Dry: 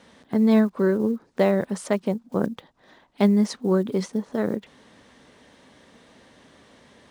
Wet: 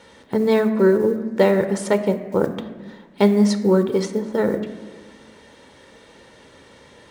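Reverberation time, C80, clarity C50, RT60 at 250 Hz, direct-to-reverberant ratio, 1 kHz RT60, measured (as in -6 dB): 1.3 s, 12.5 dB, 11.0 dB, 1.7 s, 8.5 dB, 1.2 s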